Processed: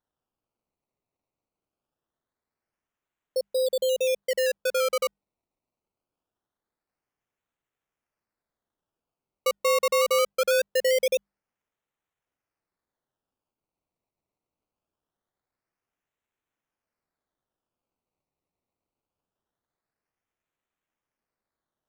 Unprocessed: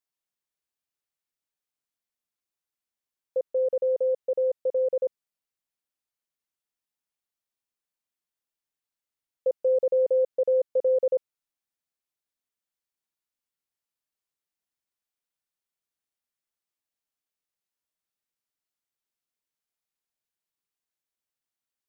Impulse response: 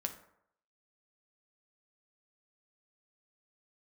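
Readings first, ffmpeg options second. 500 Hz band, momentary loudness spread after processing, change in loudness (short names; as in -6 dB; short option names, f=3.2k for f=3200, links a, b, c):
-1.0 dB, 8 LU, +0.5 dB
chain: -af "bandreject=f=50:t=h:w=6,bandreject=f=100:t=h:w=6,bandreject=f=150:t=h:w=6,bandreject=f=200:t=h:w=6,acrusher=samples=18:mix=1:aa=0.000001:lfo=1:lforange=18:lforate=0.23"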